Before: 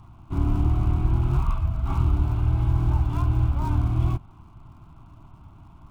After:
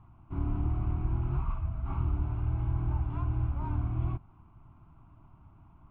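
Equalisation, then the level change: LPF 2600 Hz 24 dB/oct; -8.5 dB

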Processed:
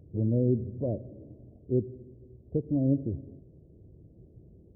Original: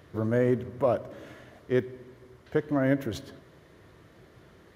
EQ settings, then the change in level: Gaussian blur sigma 20 samples; low shelf 81 Hz +7.5 dB; +2.0 dB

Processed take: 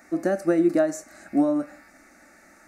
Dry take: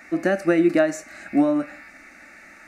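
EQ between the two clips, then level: tone controls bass -3 dB, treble +3 dB; bell 2600 Hz -13.5 dB 1.4 oct; -1.0 dB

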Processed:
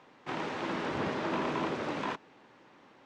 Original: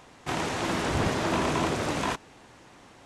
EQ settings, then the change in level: three-band isolator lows -18 dB, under 150 Hz, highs -15 dB, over 6100 Hz; high shelf 5100 Hz -11.5 dB; notch 700 Hz, Q 12; -4.5 dB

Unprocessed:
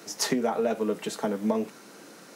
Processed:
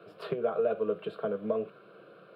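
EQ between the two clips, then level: air absorption 480 m; low shelf 450 Hz +3 dB; fixed phaser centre 1300 Hz, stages 8; 0.0 dB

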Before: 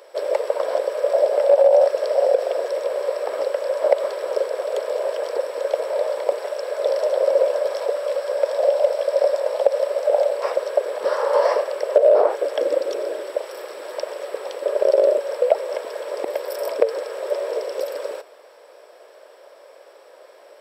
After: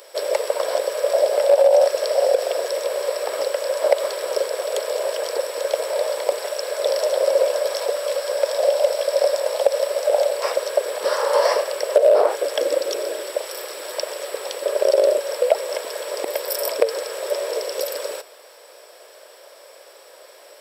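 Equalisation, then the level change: high shelf 2000 Hz +8.5 dB; high shelf 4800 Hz +7 dB; -1.0 dB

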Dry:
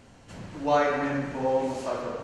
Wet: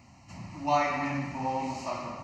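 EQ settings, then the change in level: HPF 64 Hz; dynamic EQ 3300 Hz, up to +5 dB, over -47 dBFS, Q 1.2; fixed phaser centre 2300 Hz, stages 8; +1.0 dB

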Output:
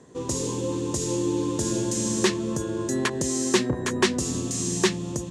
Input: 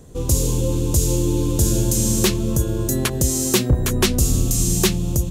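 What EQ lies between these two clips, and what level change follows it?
speaker cabinet 170–8300 Hz, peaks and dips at 260 Hz +3 dB, 380 Hz +4 dB, 1000 Hz +8 dB, 1800 Hz +9 dB; -5.0 dB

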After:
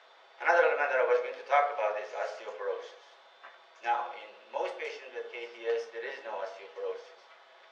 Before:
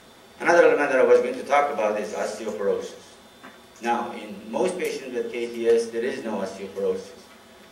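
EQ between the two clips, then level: HPF 570 Hz 24 dB/oct; LPF 5700 Hz 12 dB/oct; air absorption 140 m; -4.0 dB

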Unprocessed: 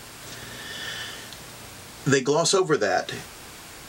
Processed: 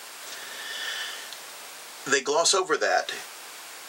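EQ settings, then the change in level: HPF 560 Hz 12 dB/oct; +1.5 dB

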